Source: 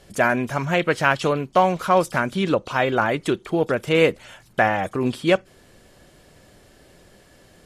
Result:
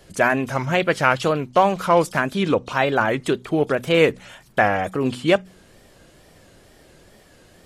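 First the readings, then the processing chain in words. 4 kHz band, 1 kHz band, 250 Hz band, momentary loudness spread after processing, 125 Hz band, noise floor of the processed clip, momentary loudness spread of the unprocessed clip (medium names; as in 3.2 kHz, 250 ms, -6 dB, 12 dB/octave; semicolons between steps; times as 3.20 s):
+1.0 dB, +1.0 dB, +1.0 dB, 5 LU, +0.5 dB, -52 dBFS, 5 LU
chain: wow and flutter 120 cents; de-hum 61.85 Hz, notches 4; trim +1 dB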